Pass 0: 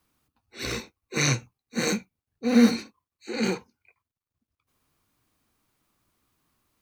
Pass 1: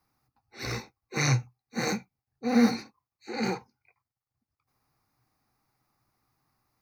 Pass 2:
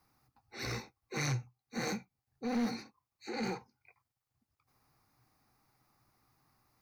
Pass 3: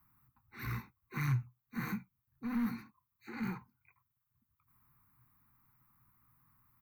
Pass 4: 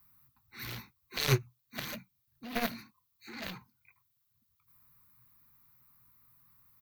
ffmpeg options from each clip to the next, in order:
-af "equalizer=f=125:t=o:w=0.33:g=10,equalizer=f=800:t=o:w=0.33:g=11,equalizer=f=1.25k:t=o:w=0.33:g=4,equalizer=f=2k:t=o:w=0.33:g=4,equalizer=f=3.15k:t=o:w=0.33:g=-11,equalizer=f=5k:t=o:w=0.33:g=6,equalizer=f=8k:t=o:w=0.33:g=-9,volume=-4.5dB"
-af "acompressor=threshold=-49dB:ratio=1.5,asoftclip=type=tanh:threshold=-29.5dB,volume=2.5dB"
-af "firequalizer=gain_entry='entry(180,0);entry(600,-28);entry(1000,-1);entry(5200,-22);entry(14000,6)':delay=0.05:min_phase=1,volume=3dB"
-af "aeval=exprs='0.0631*(cos(1*acos(clip(val(0)/0.0631,-1,1)))-cos(1*PI/2))+0.0282*(cos(3*acos(clip(val(0)/0.0631,-1,1)))-cos(3*PI/2))':c=same,firequalizer=gain_entry='entry(1200,0);entry(4000,13);entry(7900,9)':delay=0.05:min_phase=1,volume=8.5dB"

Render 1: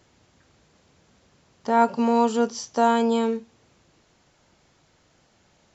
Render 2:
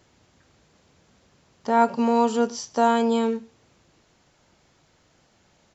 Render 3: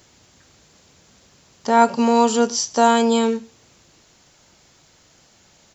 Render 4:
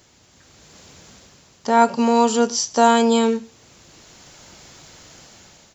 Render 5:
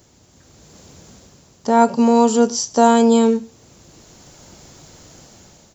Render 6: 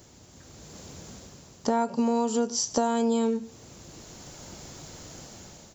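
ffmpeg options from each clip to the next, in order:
-filter_complex "[0:a]asplit=2[a][b];[b]adelay=105,volume=-23dB,highshelf=f=4k:g=-2.36[c];[a][c]amix=inputs=2:normalize=0"
-af "highshelf=f=3.8k:g=11.5,volume=4dB"
-af "dynaudnorm=f=270:g=5:m=10.5dB,volume=-1dB"
-af "equalizer=f=2.4k:t=o:w=2.9:g=-9.5,volume=5dB"
-af "acompressor=threshold=-22dB:ratio=8"

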